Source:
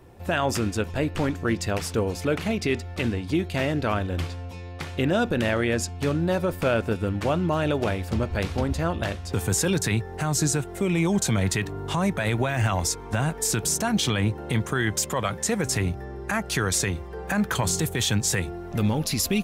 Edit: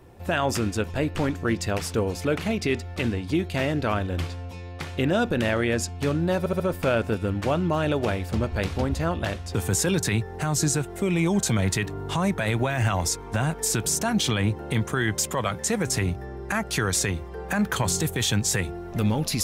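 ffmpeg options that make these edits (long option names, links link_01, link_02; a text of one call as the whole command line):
ffmpeg -i in.wav -filter_complex "[0:a]asplit=4[link_01][link_02][link_03][link_04];[link_01]atrim=end=6.462[link_05];[link_02]atrim=start=6.388:end=6.462[link_06];[link_03]atrim=start=6.388:end=6.462[link_07];[link_04]atrim=start=6.388[link_08];[link_05][link_06]acrossfade=duration=0.004:curve1=hsin:curve2=hsin[link_09];[link_09][link_07]acrossfade=duration=0.004:curve1=hsin:curve2=hsin[link_10];[link_10][link_08]acrossfade=duration=0.004:curve1=hsin:curve2=hsin" out.wav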